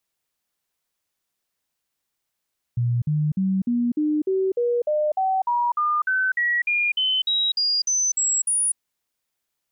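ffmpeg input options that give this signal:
-f lavfi -i "aevalsrc='0.119*clip(min(mod(t,0.3),0.25-mod(t,0.3))/0.005,0,1)*sin(2*PI*120*pow(2,floor(t/0.3)/3)*mod(t,0.3))':d=6:s=44100"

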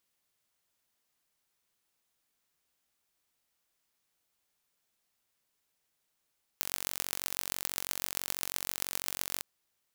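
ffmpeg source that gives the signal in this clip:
-f lavfi -i "aevalsrc='0.708*eq(mod(n,957),0)*(0.5+0.5*eq(mod(n,5742),0))':d=2.82:s=44100"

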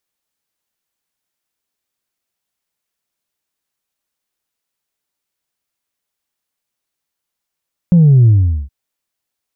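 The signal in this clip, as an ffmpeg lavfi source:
-f lavfi -i "aevalsrc='0.562*clip((0.77-t)/0.42,0,1)*tanh(1.06*sin(2*PI*180*0.77/log(65/180)*(exp(log(65/180)*t/0.77)-1)))/tanh(1.06)':d=0.77:s=44100"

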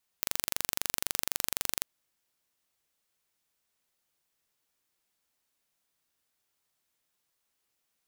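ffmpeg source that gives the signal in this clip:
-f lavfi -i "aevalsrc='0.841*eq(mod(n,1845),0)':d=1.61:s=44100"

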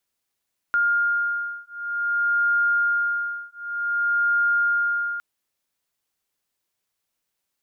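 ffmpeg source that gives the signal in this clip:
-f lavfi -i "aevalsrc='0.0708*(sin(2*PI*1410*t)+sin(2*PI*1410.54*t))':d=4.46:s=44100"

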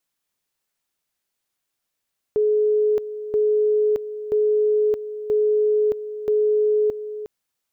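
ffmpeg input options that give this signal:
-f lavfi -i "aevalsrc='pow(10,(-15.5-12.5*gte(mod(t,0.98),0.62))/20)*sin(2*PI*424*t)':d=4.9:s=44100"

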